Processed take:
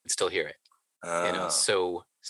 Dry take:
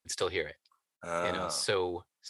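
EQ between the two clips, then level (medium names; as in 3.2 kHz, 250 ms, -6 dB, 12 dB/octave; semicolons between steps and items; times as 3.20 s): high-pass 160 Hz 12 dB/octave; peaking EQ 8.6 kHz +9 dB 0.57 oct; +4.0 dB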